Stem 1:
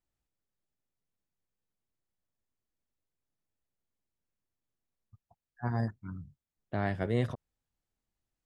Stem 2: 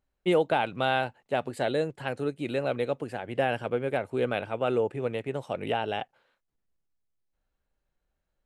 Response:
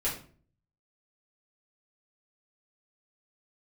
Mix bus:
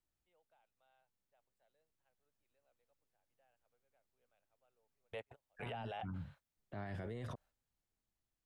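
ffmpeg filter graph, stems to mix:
-filter_complex "[0:a]alimiter=level_in=1.41:limit=0.0631:level=0:latency=1:release=37,volume=0.708,dynaudnorm=f=400:g=9:m=1.5,volume=0.708,asplit=2[s0][s1];[1:a]lowshelf=f=460:t=q:w=1.5:g=-10.5,volume=1.19[s2];[s1]apad=whole_len=373018[s3];[s2][s3]sidechaingate=range=0.00224:threshold=0.001:ratio=16:detection=peak[s4];[s0][s4]amix=inputs=2:normalize=0,acrossover=split=360|3500[s5][s6][s7];[s5]acompressor=threshold=0.0141:ratio=4[s8];[s6]acompressor=threshold=0.0251:ratio=4[s9];[s7]acompressor=threshold=0.002:ratio=4[s10];[s8][s9][s10]amix=inputs=3:normalize=0,alimiter=level_in=4.22:limit=0.0631:level=0:latency=1:release=15,volume=0.237"

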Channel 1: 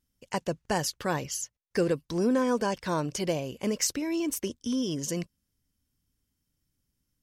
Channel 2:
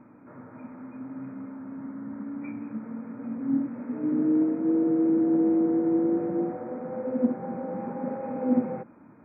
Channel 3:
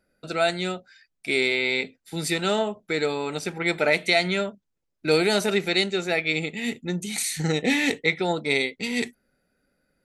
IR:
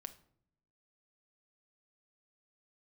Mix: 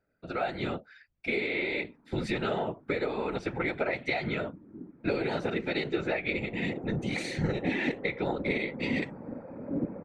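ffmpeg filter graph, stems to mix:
-filter_complex "[1:a]aecho=1:1:4.4:0.69,adelay=1250,volume=0.531,afade=t=in:st=6.16:d=0.53:silence=0.266073[s0];[2:a]dynaudnorm=f=110:g=11:m=3.16,volume=1,lowpass=2500,acompressor=threshold=0.0891:ratio=6,volume=1[s1];[s0][s1]amix=inputs=2:normalize=0,afftfilt=real='hypot(re,im)*cos(2*PI*random(0))':imag='hypot(re,im)*sin(2*PI*random(1))':win_size=512:overlap=0.75"

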